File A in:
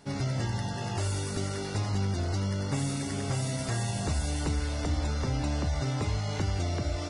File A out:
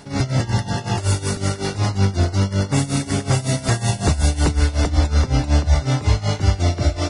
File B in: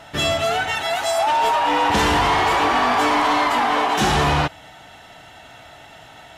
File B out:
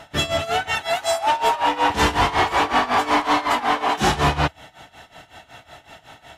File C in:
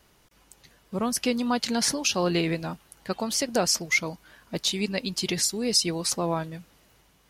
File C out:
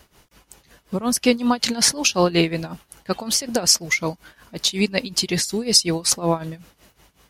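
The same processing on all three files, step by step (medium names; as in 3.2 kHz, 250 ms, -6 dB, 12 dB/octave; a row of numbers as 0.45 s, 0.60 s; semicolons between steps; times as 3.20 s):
peaking EQ 74 Hz +4 dB 0.34 oct; tremolo 5.4 Hz, depth 85%; normalise loudness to -20 LUFS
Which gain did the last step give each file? +14.0 dB, +2.0 dB, +9.5 dB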